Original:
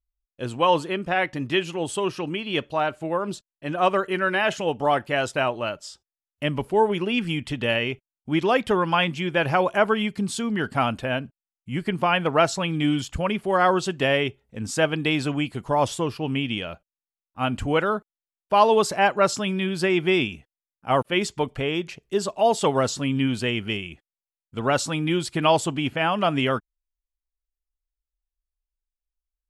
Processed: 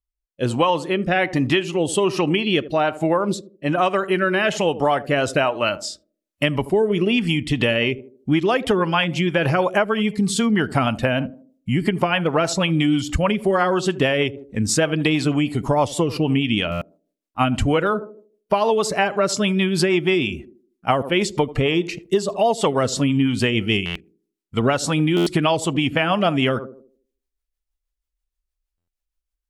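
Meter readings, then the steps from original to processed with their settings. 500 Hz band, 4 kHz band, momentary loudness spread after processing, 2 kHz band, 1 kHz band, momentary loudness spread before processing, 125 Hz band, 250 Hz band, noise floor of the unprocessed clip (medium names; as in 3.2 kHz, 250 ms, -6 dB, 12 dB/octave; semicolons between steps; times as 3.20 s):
+3.0 dB, +4.0 dB, 6 LU, +3.0 dB, +0.5 dB, 9 LU, +6.0 dB, +6.0 dB, under -85 dBFS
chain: spectral noise reduction 8 dB; band-passed feedback delay 78 ms, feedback 41%, band-pass 340 Hz, level -15.5 dB; level rider gain up to 7 dB; rotary cabinet horn 1.2 Hz, later 6.3 Hz, at 7.14 s; compression, threshold -23 dBFS, peak gain reduction 12.5 dB; buffer glitch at 16.71/23.85/25.16/28.77 s, samples 512, times 8; trim +7.5 dB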